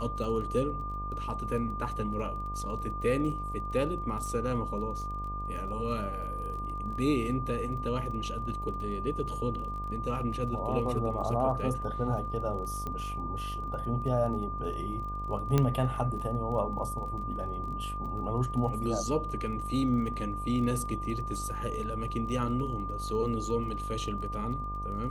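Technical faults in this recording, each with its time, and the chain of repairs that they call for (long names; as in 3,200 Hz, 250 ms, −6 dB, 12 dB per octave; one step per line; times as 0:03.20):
mains buzz 50 Hz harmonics 19 −38 dBFS
surface crackle 25 per second −40 dBFS
whistle 1,200 Hz −36 dBFS
0:12.87: click −23 dBFS
0:15.58: click −13 dBFS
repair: click removal
hum removal 50 Hz, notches 19
notch filter 1,200 Hz, Q 30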